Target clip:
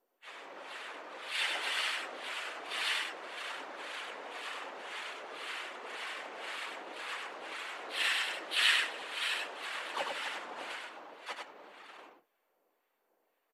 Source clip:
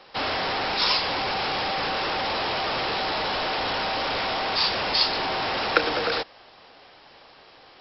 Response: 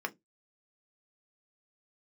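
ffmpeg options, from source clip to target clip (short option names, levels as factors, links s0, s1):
-filter_complex "[0:a]aderivative,asplit=2[s0][s1];[s1]aecho=0:1:151|348|560|761:0.531|0.266|0.168|0.668[s2];[s0][s2]amix=inputs=2:normalize=0,acrossover=split=2000[s3][s4];[s3]aeval=exprs='val(0)*(1-0.7/2+0.7/2*cos(2*PI*3.3*n/s))':c=same[s5];[s4]aeval=exprs='val(0)*(1-0.7/2-0.7/2*cos(2*PI*3.3*n/s))':c=same[s6];[s5][s6]amix=inputs=2:normalize=0,adynamicsmooth=sensitivity=7.5:basefreq=900,asplit=4[s7][s8][s9][s10];[s8]asetrate=29433,aresample=44100,atempo=1.49831,volume=0.891[s11];[s9]asetrate=52444,aresample=44100,atempo=0.840896,volume=0.891[s12];[s10]asetrate=66075,aresample=44100,atempo=0.66742,volume=0.562[s13];[s7][s11][s12][s13]amix=inputs=4:normalize=0,afftfilt=real='hypot(re,im)*cos(2*PI*random(0))':imag='hypot(re,im)*sin(2*PI*random(1))':win_size=512:overlap=0.75,highpass=690,asetrate=25442,aresample=44100,asplit=2[s14][s15];[s15]aecho=0:1:99:0.668[s16];[s14][s16]amix=inputs=2:normalize=0" -ar 48000 -c:a mp2 -b:a 192k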